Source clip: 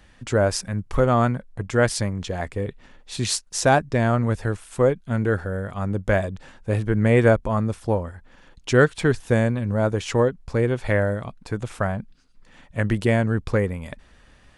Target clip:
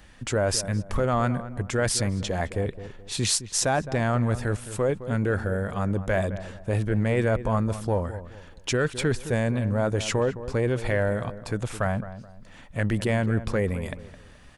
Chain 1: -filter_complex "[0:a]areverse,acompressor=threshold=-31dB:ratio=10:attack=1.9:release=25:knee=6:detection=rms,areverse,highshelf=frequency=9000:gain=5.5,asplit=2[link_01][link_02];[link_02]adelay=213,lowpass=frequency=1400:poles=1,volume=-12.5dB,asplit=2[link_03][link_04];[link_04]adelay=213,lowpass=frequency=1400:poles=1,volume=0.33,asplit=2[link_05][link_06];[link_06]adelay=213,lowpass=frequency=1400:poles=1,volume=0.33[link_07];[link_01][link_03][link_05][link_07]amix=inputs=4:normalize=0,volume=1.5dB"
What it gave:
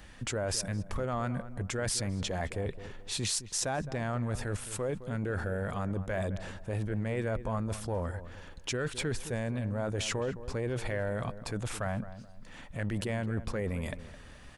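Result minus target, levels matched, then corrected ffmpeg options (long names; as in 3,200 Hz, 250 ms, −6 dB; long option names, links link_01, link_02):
downward compressor: peak gain reduction +9.5 dB
-filter_complex "[0:a]areverse,acompressor=threshold=-20.5dB:ratio=10:attack=1.9:release=25:knee=6:detection=rms,areverse,highshelf=frequency=9000:gain=5.5,asplit=2[link_01][link_02];[link_02]adelay=213,lowpass=frequency=1400:poles=1,volume=-12.5dB,asplit=2[link_03][link_04];[link_04]adelay=213,lowpass=frequency=1400:poles=1,volume=0.33,asplit=2[link_05][link_06];[link_06]adelay=213,lowpass=frequency=1400:poles=1,volume=0.33[link_07];[link_01][link_03][link_05][link_07]amix=inputs=4:normalize=0,volume=1.5dB"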